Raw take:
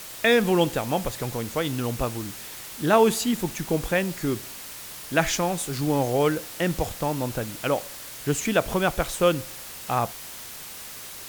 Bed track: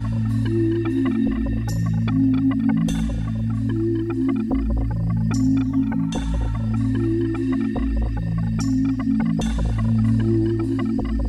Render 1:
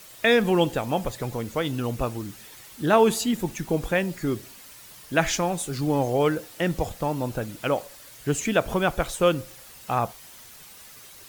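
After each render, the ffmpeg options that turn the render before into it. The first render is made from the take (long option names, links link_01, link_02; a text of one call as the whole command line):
ffmpeg -i in.wav -af "afftdn=noise_reduction=9:noise_floor=-40" out.wav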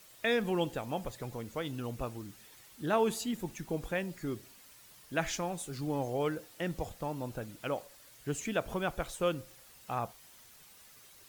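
ffmpeg -i in.wav -af "volume=-10.5dB" out.wav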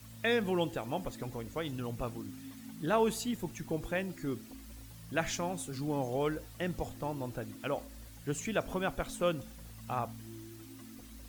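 ffmpeg -i in.wav -i bed.wav -filter_complex "[1:a]volume=-29dB[link_01];[0:a][link_01]amix=inputs=2:normalize=0" out.wav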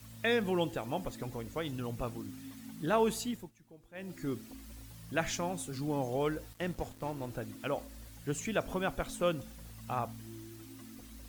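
ffmpeg -i in.wav -filter_complex "[0:a]asettb=1/sr,asplit=3[link_01][link_02][link_03];[link_01]atrim=end=6.534[link_04];[link_02]atrim=start=6.53:end=7.3,asetpts=PTS-STARTPTS,afade=type=in:duration=0.004:curve=qsin,afade=type=out:start_time=0.766:duration=0.004:curve=qsin,aeval=exprs='sgn(val(0))*max(abs(val(0))-0.00299,0)':channel_layout=same[link_05];[link_03]atrim=start=7.296[link_06];[link_04][link_05]acrossfade=duration=0.004:curve1=hsin:curve2=qsin[link_07];[link_07][link_06]acrossfade=duration=0.004:curve1=qsin:curve2=hsin,asplit=3[link_08][link_09][link_10];[link_08]atrim=end=3.51,asetpts=PTS-STARTPTS,afade=type=out:start_time=3.15:duration=0.36:curve=qsin:silence=0.0891251[link_11];[link_09]atrim=start=3.51:end=3.93,asetpts=PTS-STARTPTS,volume=-21dB[link_12];[link_10]atrim=start=3.93,asetpts=PTS-STARTPTS,afade=type=in:duration=0.36:curve=qsin:silence=0.0891251[link_13];[link_11][link_12][link_13]concat=n=3:v=0:a=1" out.wav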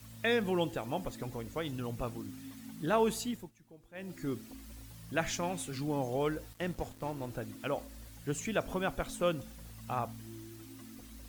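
ffmpeg -i in.wav -filter_complex "[0:a]asettb=1/sr,asplit=3[link_01][link_02][link_03];[link_01]atrim=end=5.434[link_04];[link_02]atrim=start=5.43:end=5.83,asetpts=PTS-STARTPTS,afade=type=in:duration=0.004:curve=qsin,afade=type=out:start_time=0.396:duration=0.004:curve=qsin,equalizer=frequency=2400:width=1.1:gain=7[link_05];[link_03]atrim=start=5.826[link_06];[link_04][link_05]acrossfade=duration=0.004:curve1=hsin:curve2=qsin[link_07];[link_07][link_06]acrossfade=duration=0.004:curve1=qsin:curve2=hsin" out.wav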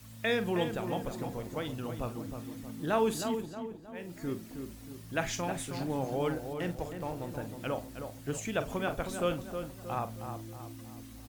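ffmpeg -i in.wav -filter_complex "[0:a]asplit=2[link_01][link_02];[link_02]adelay=45,volume=-12dB[link_03];[link_01][link_03]amix=inputs=2:normalize=0,asplit=2[link_04][link_05];[link_05]adelay=315,lowpass=frequency=1700:poles=1,volume=-7dB,asplit=2[link_06][link_07];[link_07]adelay=315,lowpass=frequency=1700:poles=1,volume=0.48,asplit=2[link_08][link_09];[link_09]adelay=315,lowpass=frequency=1700:poles=1,volume=0.48,asplit=2[link_10][link_11];[link_11]adelay=315,lowpass=frequency=1700:poles=1,volume=0.48,asplit=2[link_12][link_13];[link_13]adelay=315,lowpass=frequency=1700:poles=1,volume=0.48,asplit=2[link_14][link_15];[link_15]adelay=315,lowpass=frequency=1700:poles=1,volume=0.48[link_16];[link_04][link_06][link_08][link_10][link_12][link_14][link_16]amix=inputs=7:normalize=0" out.wav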